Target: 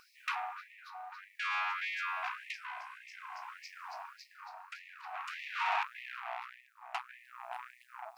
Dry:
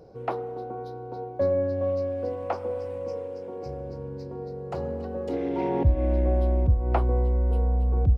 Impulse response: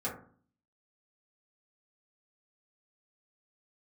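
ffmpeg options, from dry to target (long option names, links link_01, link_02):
-filter_complex "[0:a]asplit=2[link_01][link_02];[link_02]alimiter=limit=-20.5dB:level=0:latency=1,volume=0dB[link_03];[link_01][link_03]amix=inputs=2:normalize=0,aeval=exprs='(tanh(22.4*val(0)+0.55)-tanh(0.55))/22.4':channel_layout=same,equalizer=frequency=315:width_type=o:width=0.33:gain=5,equalizer=frequency=1250:width_type=o:width=0.33:gain=4,equalizer=frequency=2500:width_type=o:width=0.33:gain=9,acrusher=bits=11:mix=0:aa=0.000001,tremolo=f=0.52:d=0.59,areverse,acompressor=mode=upward:threshold=-37dB:ratio=2.5,areverse,lowshelf=frequency=61:gain=-4,afftfilt=real='re*gte(b*sr/1024,630*pow(1800/630,0.5+0.5*sin(2*PI*1.7*pts/sr)))':imag='im*gte(b*sr/1024,630*pow(1800/630,0.5+0.5*sin(2*PI*1.7*pts/sr)))':win_size=1024:overlap=0.75,volume=3dB"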